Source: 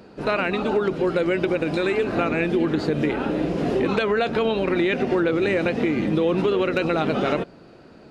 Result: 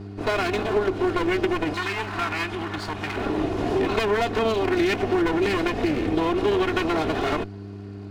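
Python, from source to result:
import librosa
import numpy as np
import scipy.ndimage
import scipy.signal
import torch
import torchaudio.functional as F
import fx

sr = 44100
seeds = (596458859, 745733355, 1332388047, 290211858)

y = fx.lower_of_two(x, sr, delay_ms=2.8)
y = fx.low_shelf_res(y, sr, hz=720.0, db=-9.5, q=1.5, at=(1.73, 3.16))
y = fx.dmg_buzz(y, sr, base_hz=100.0, harmonics=4, level_db=-37.0, tilt_db=-4, odd_only=False)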